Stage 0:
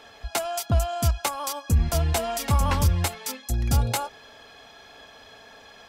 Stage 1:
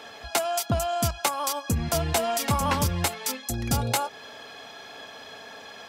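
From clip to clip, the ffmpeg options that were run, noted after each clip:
-filter_complex "[0:a]highpass=130,asplit=2[a][b];[b]acompressor=threshold=-35dB:ratio=6,volume=-1.5dB[c];[a][c]amix=inputs=2:normalize=0"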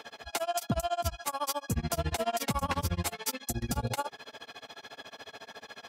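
-af "alimiter=limit=-18.5dB:level=0:latency=1:release=21,tremolo=f=14:d=0.98"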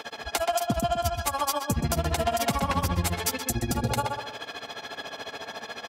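-filter_complex "[0:a]acompressor=threshold=-31dB:ratio=6,asplit=2[a][b];[b]adelay=126,lowpass=f=2.7k:p=1,volume=-4dB,asplit=2[c][d];[d]adelay=126,lowpass=f=2.7k:p=1,volume=0.31,asplit=2[e][f];[f]adelay=126,lowpass=f=2.7k:p=1,volume=0.31,asplit=2[g][h];[h]adelay=126,lowpass=f=2.7k:p=1,volume=0.31[i];[c][e][g][i]amix=inputs=4:normalize=0[j];[a][j]amix=inputs=2:normalize=0,volume=8dB"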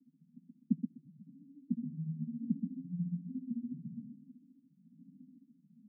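-filter_complex "[0:a]asuperpass=centerf=200:order=12:qfactor=1.7,asplit=2[a][b];[b]afreqshift=1.1[c];[a][c]amix=inputs=2:normalize=1"

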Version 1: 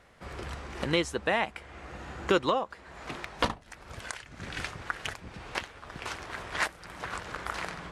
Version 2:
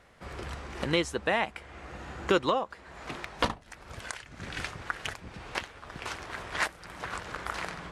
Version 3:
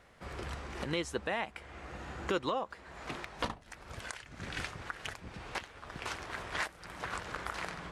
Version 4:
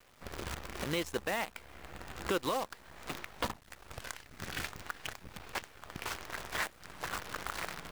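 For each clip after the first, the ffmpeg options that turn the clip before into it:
-af anull
-af "alimiter=limit=-19.5dB:level=0:latency=1:release=214,volume=-2dB"
-af "acrusher=bits=7:dc=4:mix=0:aa=0.000001"

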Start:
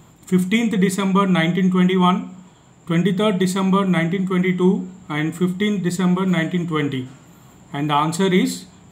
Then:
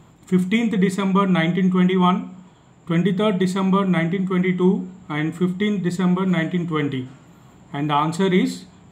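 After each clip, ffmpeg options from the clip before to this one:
-af "lowpass=f=3.8k:p=1,volume=-1dB"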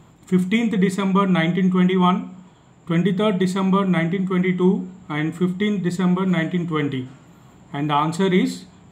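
-af anull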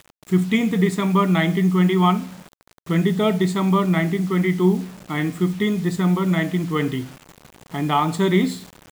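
-af "acrusher=bits=6:mix=0:aa=0.000001"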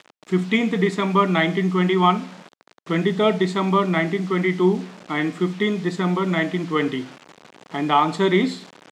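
-af "highpass=250,lowpass=5.2k,volume=2.5dB"

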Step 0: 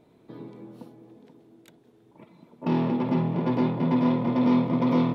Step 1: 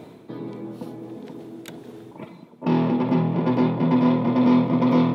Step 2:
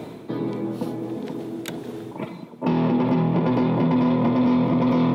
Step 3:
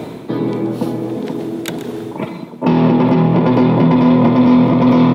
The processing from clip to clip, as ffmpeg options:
-af "highpass=90,areverse,acompressor=mode=upward:threshold=-30dB:ratio=2.5,areverse,volume=4dB"
-filter_complex "[0:a]acrossover=split=130[a][b];[a]asoftclip=type=tanh:threshold=-40dB[c];[b]alimiter=limit=-20dB:level=0:latency=1:release=131[d];[c][d]amix=inputs=2:normalize=0,volume=7dB"
-af "aecho=1:1:129:0.211,volume=8.5dB"

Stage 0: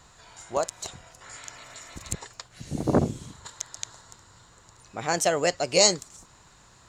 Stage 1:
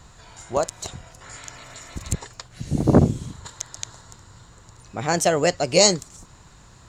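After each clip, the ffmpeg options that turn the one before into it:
-af "lowshelf=f=280:g=8.5,volume=2.5dB"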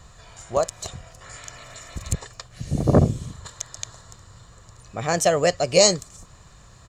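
-af "aecho=1:1:1.7:0.36,volume=-1dB"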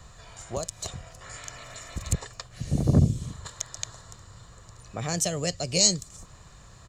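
-filter_complex "[0:a]acrossover=split=270|3000[a][b][c];[b]acompressor=threshold=-32dB:ratio=6[d];[a][d][c]amix=inputs=3:normalize=0,volume=-1dB"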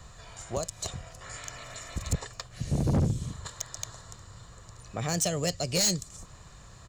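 -af "asoftclip=type=hard:threshold=-21dB"

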